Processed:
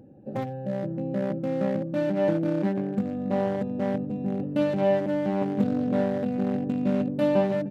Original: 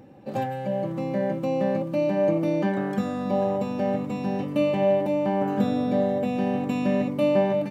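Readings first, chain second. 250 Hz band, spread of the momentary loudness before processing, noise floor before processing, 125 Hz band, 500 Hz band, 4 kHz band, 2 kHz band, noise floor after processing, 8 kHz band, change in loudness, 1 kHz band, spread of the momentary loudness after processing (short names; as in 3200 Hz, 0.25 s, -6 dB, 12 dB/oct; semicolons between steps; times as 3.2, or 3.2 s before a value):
-0.5 dB, 6 LU, -32 dBFS, -0.5 dB, -2.5 dB, -4.5 dB, -3.0 dB, -35 dBFS, n/a, -1.5 dB, -5.0 dB, 7 LU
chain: Wiener smoothing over 41 samples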